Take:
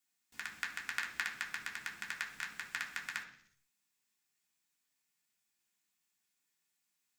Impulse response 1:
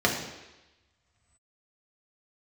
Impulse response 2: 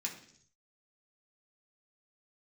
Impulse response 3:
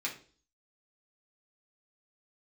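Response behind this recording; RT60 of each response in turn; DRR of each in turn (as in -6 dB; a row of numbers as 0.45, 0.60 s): 2; 1.0, 0.60, 0.40 s; -1.5, -2.0, -4.0 dB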